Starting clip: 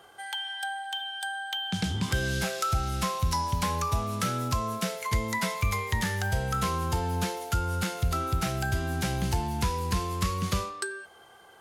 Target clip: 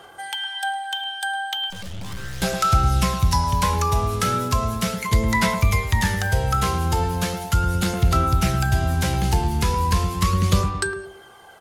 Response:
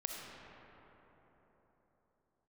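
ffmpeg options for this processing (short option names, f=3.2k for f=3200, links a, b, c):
-filter_complex "[0:a]asettb=1/sr,asplit=3[a][b][c];[a]atrim=end=1.704[d];[b]atrim=start=1.7:end=2.42,asetpts=PTS-STARTPTS,afade=t=in:d=0.004:c=qsin,afade=t=out:st=0.716:d=0.004:c=qsin,aeval=exprs='(tanh(112*val(0)+0.7)-tanh(0.7))/112':c=same[e];[c]atrim=start=2.416[f];[d][e]acrossfade=d=0.004:c1=hsin:c2=qsin[g];[g][f]acrossfade=d=0.004:c1=qsin:c2=hsin,asplit=2[h][i];[i]adelay=108,lowpass=f=850:p=1,volume=-6dB,asplit=2[j][k];[k]adelay=108,lowpass=f=850:p=1,volume=0.45,asplit=2[l][m];[m]adelay=108,lowpass=f=850:p=1,volume=0.45,asplit=2[n][o];[o]adelay=108,lowpass=f=850:p=1,volume=0.45,asplit=2[p][q];[q]adelay=108,lowpass=f=850:p=1,volume=0.45[r];[h][j][l][n][p][r]amix=inputs=6:normalize=0,aphaser=in_gain=1:out_gain=1:delay=2.5:decay=0.31:speed=0.37:type=sinusoidal,volume=6dB"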